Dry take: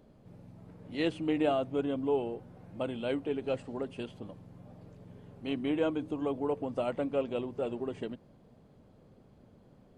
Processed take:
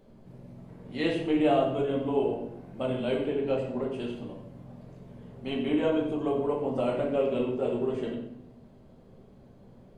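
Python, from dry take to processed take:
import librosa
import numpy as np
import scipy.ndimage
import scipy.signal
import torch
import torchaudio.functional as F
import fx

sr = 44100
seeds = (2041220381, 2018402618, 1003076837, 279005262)

y = fx.high_shelf(x, sr, hz=5900.0, db=-8.5, at=(3.3, 3.94))
y = y + 10.0 ** (-12.0 / 20.0) * np.pad(y, (int(93 * sr / 1000.0), 0))[:len(y)]
y = fx.room_shoebox(y, sr, seeds[0], volume_m3=180.0, walls='mixed', distance_m=1.1)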